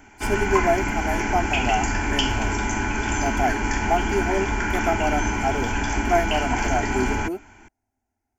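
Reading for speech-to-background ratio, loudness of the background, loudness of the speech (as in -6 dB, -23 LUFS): -2.5 dB, -24.5 LUFS, -27.0 LUFS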